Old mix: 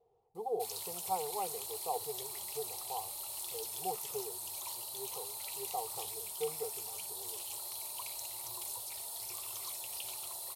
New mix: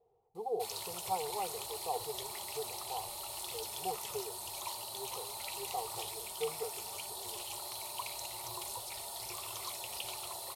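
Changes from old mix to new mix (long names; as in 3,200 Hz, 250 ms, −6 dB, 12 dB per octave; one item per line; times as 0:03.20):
background +7.0 dB
master: add low-pass filter 3,300 Hz 6 dB per octave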